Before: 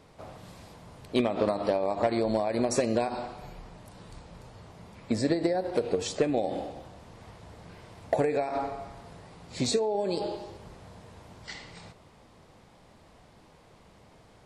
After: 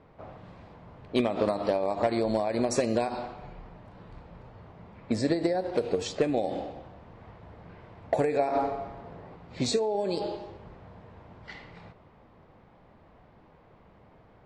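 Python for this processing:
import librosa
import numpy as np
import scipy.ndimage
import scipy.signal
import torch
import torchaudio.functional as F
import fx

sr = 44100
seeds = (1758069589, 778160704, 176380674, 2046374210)

y = fx.env_lowpass(x, sr, base_hz=1900.0, full_db=-21.5)
y = fx.peak_eq(y, sr, hz=420.0, db=5.5, octaves=2.4, at=(8.39, 9.36))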